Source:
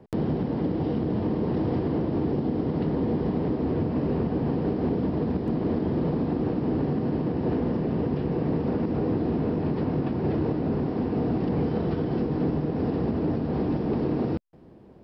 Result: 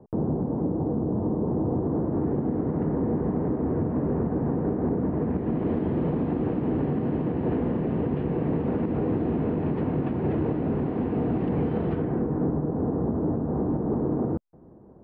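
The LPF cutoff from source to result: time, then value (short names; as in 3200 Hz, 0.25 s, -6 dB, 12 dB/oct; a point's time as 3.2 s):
LPF 24 dB/oct
1.77 s 1100 Hz
2.32 s 1700 Hz
4.98 s 1700 Hz
5.69 s 2900 Hz
11.92 s 2900 Hz
12.2 s 1700 Hz
12.7 s 1300 Hz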